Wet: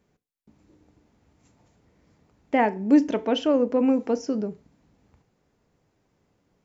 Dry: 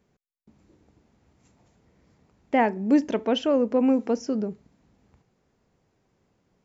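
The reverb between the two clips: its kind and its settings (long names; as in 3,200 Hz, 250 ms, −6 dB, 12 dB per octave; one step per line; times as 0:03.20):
feedback delay network reverb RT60 0.33 s, low-frequency decay 1×, high-frequency decay 0.95×, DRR 13 dB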